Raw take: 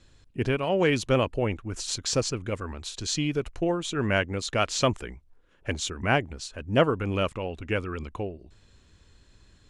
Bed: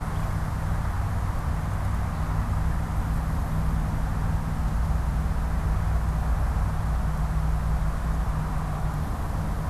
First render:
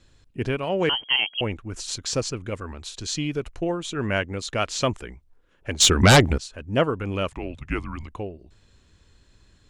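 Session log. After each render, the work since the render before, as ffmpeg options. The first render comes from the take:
-filter_complex "[0:a]asettb=1/sr,asplit=3[a][b][c];[a]atrim=end=0.894[d];[b]atrim=start=0.89:end=1.41,asetpts=PTS-STARTPTS,afade=t=in:d=0.004:c=qsin,afade=t=out:st=0.516:d=0.004:c=qsin,lowpass=f=2.8k:t=q:w=0.5098,lowpass=f=2.8k:t=q:w=0.6013,lowpass=f=2.8k:t=q:w=0.9,lowpass=f=2.8k:t=q:w=2.563,afreqshift=-3300[e];[c]atrim=start=1.406[f];[d][e]acrossfade=d=0.004:c1=hsin:c2=qsin[g];[g][f]acrossfade=d=0.004:c1=qsin:c2=hsin,asettb=1/sr,asplit=3[h][i][j];[h]atrim=end=5.804[k];[i]atrim=start=5.8:end=6.38,asetpts=PTS-STARTPTS,afade=t=in:d=0.004:c=qsin,afade=t=out:st=0.576:d=0.004:c=qsin,aeval=exprs='0.398*sin(PI/2*4.47*val(0)/0.398)':c=same[l];[j]atrim=start=6.376[m];[k][l]acrossfade=d=0.004:c1=hsin:c2=qsin[n];[n][m]acrossfade=d=0.004:c1=qsin:c2=hsin,asettb=1/sr,asplit=3[o][p][q];[o]atrim=end=7.304[r];[p]atrim=start=7.3:end=8.08,asetpts=PTS-STARTPTS,afade=t=in:d=0.004:c=qsin,afade=t=out:st=0.776:d=0.004:c=qsin,afreqshift=-160[s];[q]atrim=start=8.076[t];[r][s]acrossfade=d=0.004:c1=hsin:c2=qsin[u];[u][t]acrossfade=d=0.004:c1=qsin:c2=hsin"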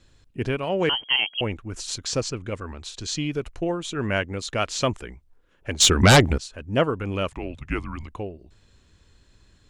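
-filter_complex "[0:a]asettb=1/sr,asplit=3[a][b][c];[a]atrim=end=2.074[d];[b]atrim=start=2.07:end=3.33,asetpts=PTS-STARTPTS,afade=t=in:d=0.004:c=qsin,afade=t=out:st=1.256:d=0.004:c=qsin,lowpass=9.4k[e];[c]atrim=start=3.326[f];[d][e]acrossfade=d=0.004:c1=hsin:c2=qsin[g];[g][f]acrossfade=d=0.004:c1=qsin:c2=hsin"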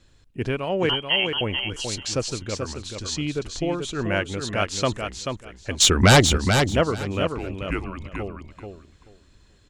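-af "aecho=1:1:435|870|1305:0.501|0.0902|0.0162"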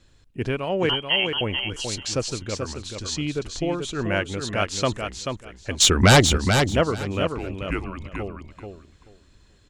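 -af anull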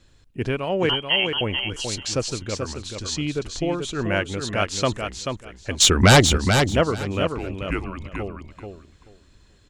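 -af "volume=1dB"

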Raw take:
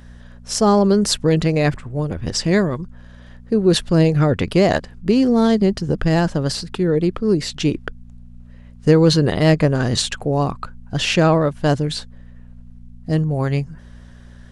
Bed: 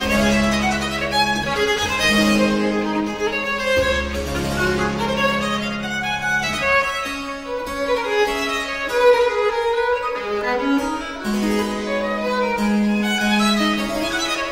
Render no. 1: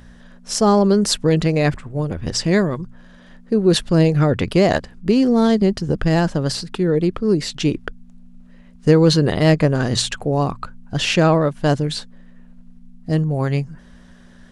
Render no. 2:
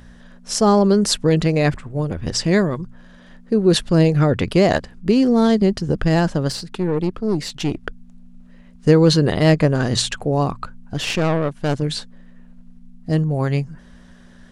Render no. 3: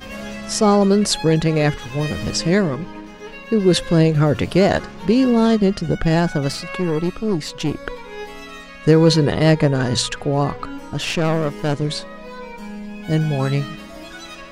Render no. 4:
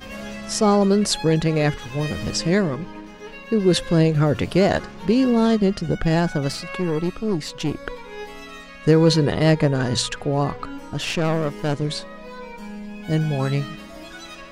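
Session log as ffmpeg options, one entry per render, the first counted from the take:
-af "bandreject=f=60:t=h:w=4,bandreject=f=120:t=h:w=4"
-filter_complex "[0:a]asettb=1/sr,asplit=3[a][b][c];[a]atrim=end=6.484[d];[b]atrim=start=6.48:end=7.83,asetpts=PTS-STARTPTS,afade=t=in:d=0.004:c=qsin,afade=t=out:st=1.346:d=0.004:c=qsin,aeval=exprs='(tanh(5.01*val(0)+0.55)-tanh(0.55))/5.01':c=same[e];[c]atrim=start=7.826[f];[d][e]acrossfade=d=0.004:c1=hsin:c2=qsin[g];[g][f]acrossfade=d=0.004:c1=qsin:c2=hsin,asettb=1/sr,asplit=3[h][i][j];[h]atrim=end=10.944[k];[i]atrim=start=10.94:end=11.82,asetpts=PTS-STARTPTS,afade=t=in:d=0.004:c=qsin,afade=t=out:st=0.876:d=0.004:c=qsin,aeval=exprs='(tanh(5.01*val(0)+0.7)-tanh(0.7))/5.01':c=same[l];[j]atrim=start=11.816[m];[k][l]acrossfade=d=0.004:c1=hsin:c2=qsin[n];[n][m]acrossfade=d=0.004:c1=qsin:c2=hsin"
-filter_complex "[1:a]volume=-14.5dB[a];[0:a][a]amix=inputs=2:normalize=0"
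-af "volume=-2.5dB"

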